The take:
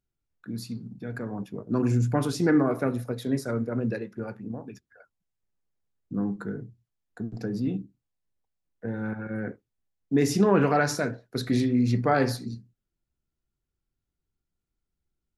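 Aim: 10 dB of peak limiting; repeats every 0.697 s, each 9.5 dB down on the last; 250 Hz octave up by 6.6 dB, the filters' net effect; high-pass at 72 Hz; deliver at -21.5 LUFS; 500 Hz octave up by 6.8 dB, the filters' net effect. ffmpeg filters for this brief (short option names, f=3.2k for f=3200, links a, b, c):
-af "highpass=72,equalizer=f=250:t=o:g=6,equalizer=f=500:t=o:g=6.5,alimiter=limit=-14dB:level=0:latency=1,aecho=1:1:697|1394|2091|2788:0.335|0.111|0.0365|0.012,volume=4dB"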